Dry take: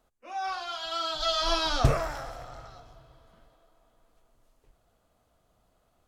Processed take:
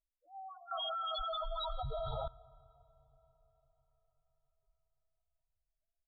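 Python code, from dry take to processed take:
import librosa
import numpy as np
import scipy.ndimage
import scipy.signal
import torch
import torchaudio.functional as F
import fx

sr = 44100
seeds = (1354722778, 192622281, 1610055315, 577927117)

y = fx.spec_topn(x, sr, count=2)
y = librosa.effects.preemphasis(y, coef=0.8, zi=[0.0])
y = y + 10.0 ** (-16.5 / 20.0) * np.pad(y, (int(215 * sr / 1000.0), 0))[:len(y)]
y = fx.rev_freeverb(y, sr, rt60_s=4.9, hf_ratio=1.0, predelay_ms=100, drr_db=12.0)
y = fx.env_lowpass(y, sr, base_hz=1200.0, full_db=-38.5)
y = fx.env_flatten(y, sr, amount_pct=100, at=(0.71, 2.28))
y = y * 10.0 ** (-1.0 / 20.0)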